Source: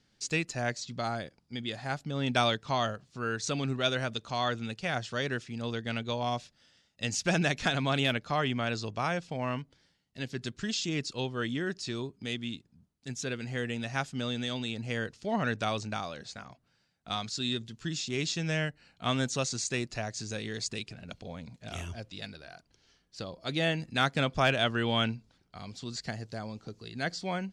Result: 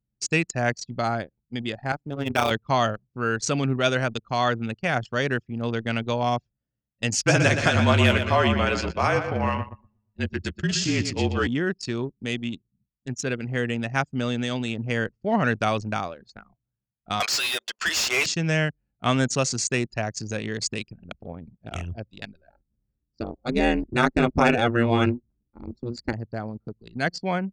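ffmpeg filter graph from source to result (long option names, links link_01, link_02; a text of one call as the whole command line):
ffmpeg -i in.wav -filter_complex "[0:a]asettb=1/sr,asplit=3[link_01][link_02][link_03];[link_01]atrim=end=1.924[link_04];[link_02]atrim=start=1.92:end=2.51,asetpts=PTS-STARTPTS,afade=type=in:duration=0.004:curve=qsin,afade=type=out:start_time=0.586:duration=0.004:curve=qsin,highpass=frequency=130:poles=1,tremolo=f=150:d=0.824,acrusher=bits=5:mode=log:mix=0:aa=0.000001[link_05];[link_03]atrim=start=2.506[link_06];[link_04][link_05]acrossfade=duration=0.004:curve1=hsin:curve2=qsin[link_07];[link_07][link_06]acrossfade=duration=0.004:curve1=qsin:curve2=hsin,asettb=1/sr,asplit=3[link_08][link_09][link_10];[link_08]atrim=end=7.164[link_11];[link_09]atrim=start=7.16:end=11.47,asetpts=PTS-STARTPTS,afade=type=in:duration=0.004:curve=qsin,afade=type=out:start_time=4.306:duration=0.004:curve=qsin,asplit=2[link_12][link_13];[link_13]adelay=15,volume=-7.5dB[link_14];[link_12][link_14]amix=inputs=2:normalize=0,atrim=end_sample=190071,afreqshift=-38,aecho=1:1:120|240|360|480|600|720:0.398|0.203|0.104|0.0528|0.0269|0.0137,atrim=end_sample=190071[link_15];[link_10]atrim=start=11.466[link_16];[link_11][link_15]acrossfade=duration=0.004:curve1=hsin:curve2=qsin[link_17];[link_17][link_16]acrossfade=duration=0.004:curve1=qsin:curve2=hsin,asettb=1/sr,asplit=3[link_18][link_19][link_20];[link_18]atrim=end=17.204[link_21];[link_19]atrim=start=17.2:end=18.26,asetpts=PTS-STARTPTS,afade=type=in:duration=0.004:curve=qsin,afade=type=out:start_time=1.056:duration=0.004:curve=qsin,highpass=frequency=570:width=0.5412,highpass=frequency=570:width=1.3066,asplit=2[link_22][link_23];[link_23]highpass=frequency=720:poles=1,volume=26dB,asoftclip=type=tanh:threshold=-20dB[link_24];[link_22][link_24]amix=inputs=2:normalize=0,lowpass=frequency=4000:poles=1,volume=-6dB[link_25];[link_20]atrim=start=18.256[link_26];[link_21][link_25]acrossfade=duration=0.004:curve1=hsin:curve2=qsin[link_27];[link_27][link_26]acrossfade=duration=0.004:curve1=qsin:curve2=hsin,asettb=1/sr,asplit=3[link_28][link_29][link_30];[link_28]atrim=end=22.504[link_31];[link_29]atrim=start=22.5:end=26.13,asetpts=PTS-STARTPTS,afade=type=in:duration=0.004:curve=qsin,afade=type=out:start_time=3.626:duration=0.004:curve=qsin,lowshelf=frequency=370:gain=8,aeval=exprs='val(0)*sin(2*PI*120*n/s)':channel_layout=same,asuperstop=centerf=3100:order=8:qfactor=7.8[link_32];[link_30]atrim=start=26.126[link_33];[link_31][link_32]acrossfade=duration=0.004:curve1=hsin:curve2=qsin[link_34];[link_34][link_33]acrossfade=duration=0.004:curve1=qsin:curve2=hsin,highpass=51,anlmdn=1.58,equalizer=frequency=3700:width=4.7:gain=-9,volume=8dB" out.wav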